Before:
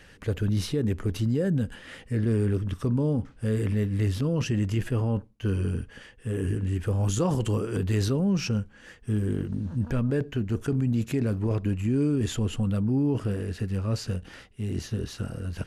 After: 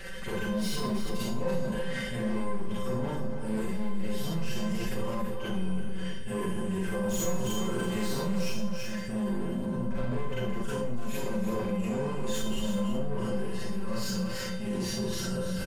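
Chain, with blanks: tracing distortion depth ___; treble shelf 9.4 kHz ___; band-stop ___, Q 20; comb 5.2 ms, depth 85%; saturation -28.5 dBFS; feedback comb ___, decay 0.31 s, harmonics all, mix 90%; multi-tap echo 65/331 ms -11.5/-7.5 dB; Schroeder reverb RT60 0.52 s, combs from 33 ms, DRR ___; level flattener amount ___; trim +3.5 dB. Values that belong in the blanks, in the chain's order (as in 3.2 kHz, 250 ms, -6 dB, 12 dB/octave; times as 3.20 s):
0.024 ms, +3 dB, 6.1 kHz, 520 Hz, -6.5 dB, 50%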